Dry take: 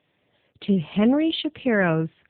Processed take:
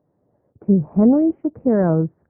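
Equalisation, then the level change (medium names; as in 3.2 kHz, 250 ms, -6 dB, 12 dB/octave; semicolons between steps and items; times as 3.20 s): Gaussian low-pass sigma 9.1 samples; +6.0 dB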